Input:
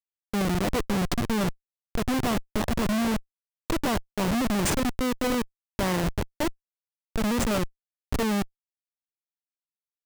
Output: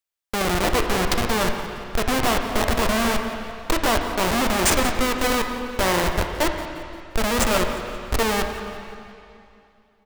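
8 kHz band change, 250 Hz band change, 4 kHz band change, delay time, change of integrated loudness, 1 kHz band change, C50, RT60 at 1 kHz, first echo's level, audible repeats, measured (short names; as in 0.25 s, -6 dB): +8.0 dB, 0.0 dB, +9.0 dB, 0.175 s, +5.0 dB, +8.5 dB, 5.0 dB, 2.6 s, -16.0 dB, 1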